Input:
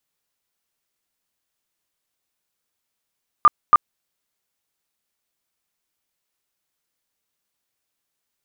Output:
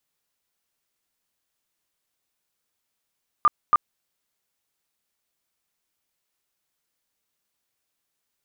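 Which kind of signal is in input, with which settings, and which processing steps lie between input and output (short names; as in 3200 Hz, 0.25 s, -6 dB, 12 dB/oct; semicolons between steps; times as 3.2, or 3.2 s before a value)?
tone bursts 1200 Hz, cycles 34, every 0.28 s, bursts 2, -6.5 dBFS
limiter -12 dBFS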